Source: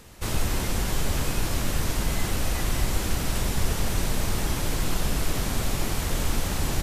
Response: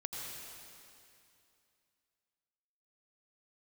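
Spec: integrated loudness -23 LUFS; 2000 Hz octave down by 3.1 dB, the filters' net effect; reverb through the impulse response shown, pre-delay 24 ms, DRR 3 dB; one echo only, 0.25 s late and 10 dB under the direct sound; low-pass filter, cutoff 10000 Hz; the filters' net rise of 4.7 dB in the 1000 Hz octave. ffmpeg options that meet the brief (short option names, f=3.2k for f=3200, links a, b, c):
-filter_complex "[0:a]lowpass=10k,equalizer=f=1k:t=o:g=7.5,equalizer=f=2k:t=o:g=-6.5,aecho=1:1:250:0.316,asplit=2[a][b];[1:a]atrim=start_sample=2205,adelay=24[c];[b][c]afir=irnorm=-1:irlink=0,volume=-3.5dB[d];[a][d]amix=inputs=2:normalize=0,volume=3dB"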